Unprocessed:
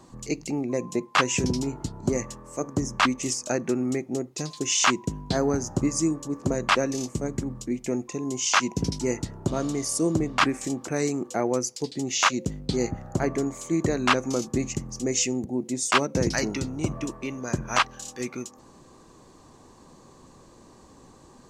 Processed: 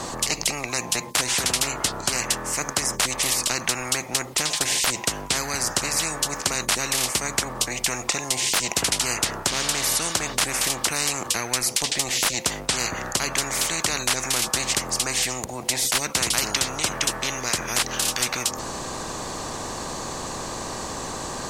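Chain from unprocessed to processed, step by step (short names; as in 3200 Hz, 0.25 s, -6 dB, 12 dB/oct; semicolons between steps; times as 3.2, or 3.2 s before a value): spectral compressor 10:1; gain +5.5 dB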